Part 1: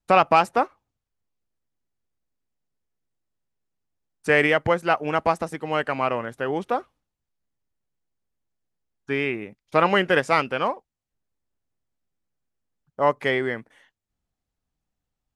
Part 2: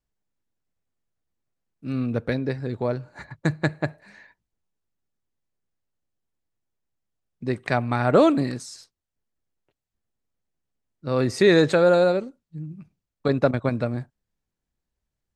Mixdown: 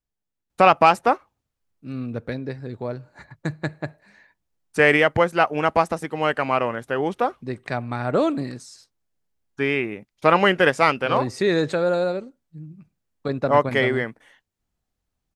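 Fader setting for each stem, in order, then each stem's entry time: +2.5 dB, -4.0 dB; 0.50 s, 0.00 s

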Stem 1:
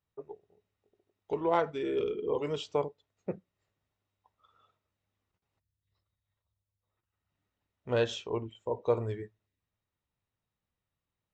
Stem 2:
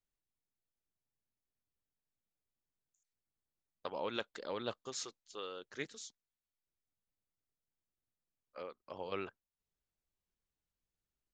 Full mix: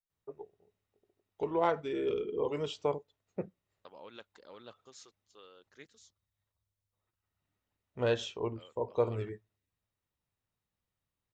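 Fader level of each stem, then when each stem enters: -1.5 dB, -11.5 dB; 0.10 s, 0.00 s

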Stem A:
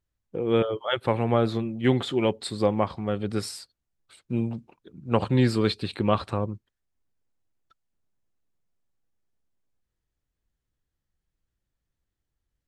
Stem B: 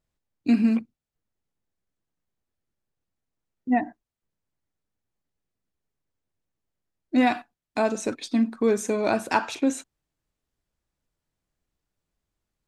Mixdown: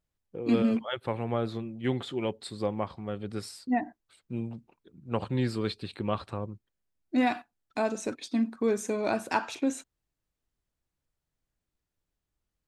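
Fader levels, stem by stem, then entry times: -7.5 dB, -5.0 dB; 0.00 s, 0.00 s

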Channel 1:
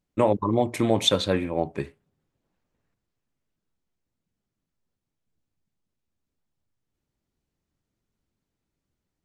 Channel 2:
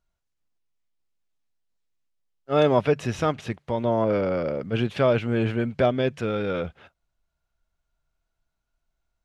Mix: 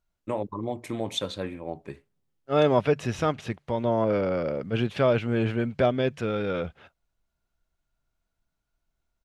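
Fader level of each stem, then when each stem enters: -9.0 dB, -1.5 dB; 0.10 s, 0.00 s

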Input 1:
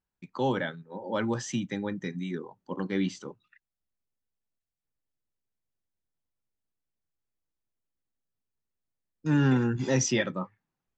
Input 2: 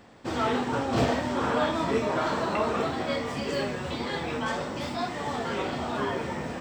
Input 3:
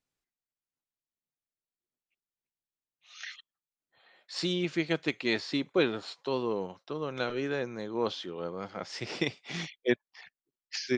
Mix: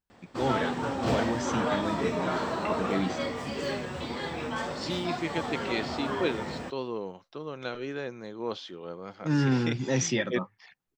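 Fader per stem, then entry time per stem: -1.5 dB, -3.0 dB, -3.0 dB; 0.00 s, 0.10 s, 0.45 s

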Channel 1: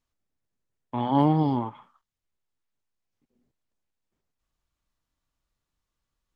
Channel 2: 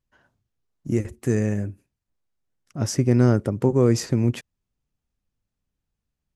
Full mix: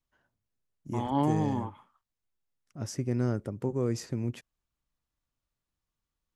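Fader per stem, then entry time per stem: -6.0 dB, -11.5 dB; 0.00 s, 0.00 s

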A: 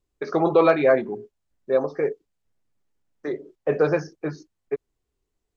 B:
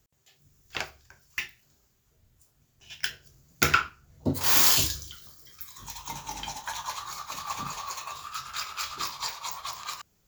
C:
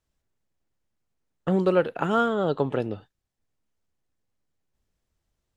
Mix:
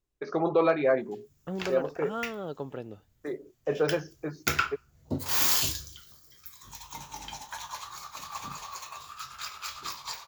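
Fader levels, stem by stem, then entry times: -6.5 dB, -4.5 dB, -12.0 dB; 0.00 s, 0.85 s, 0.00 s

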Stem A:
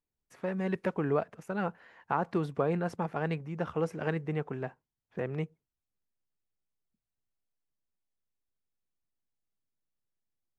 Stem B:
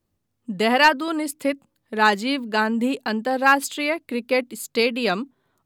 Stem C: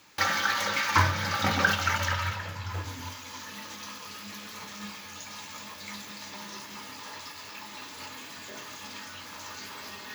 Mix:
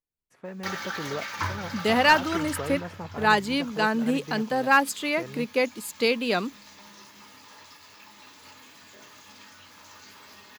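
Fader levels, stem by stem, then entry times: -5.0 dB, -3.0 dB, -7.5 dB; 0.00 s, 1.25 s, 0.45 s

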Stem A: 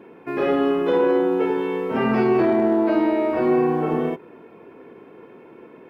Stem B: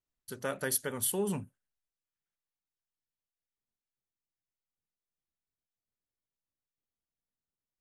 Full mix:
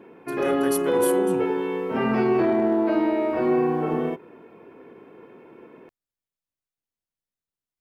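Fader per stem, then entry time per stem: -2.5 dB, -0.5 dB; 0.00 s, 0.00 s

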